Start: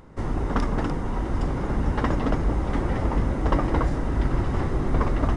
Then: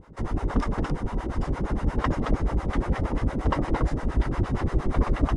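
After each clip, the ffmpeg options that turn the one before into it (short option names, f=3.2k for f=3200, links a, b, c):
-filter_complex "[0:a]acrossover=split=530[a][b];[a]aeval=exprs='val(0)*(1-1/2+1/2*cos(2*PI*8.6*n/s))':c=same[c];[b]aeval=exprs='val(0)*(1-1/2-1/2*cos(2*PI*8.6*n/s))':c=same[d];[c][d]amix=inputs=2:normalize=0,volume=3dB"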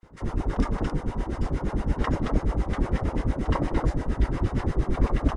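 -filter_complex "[0:a]acrossover=split=1300[a][b];[a]adelay=30[c];[c][b]amix=inputs=2:normalize=0"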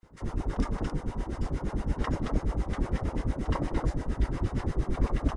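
-af "bass=f=250:g=1,treble=f=4k:g=4,volume=-5dB"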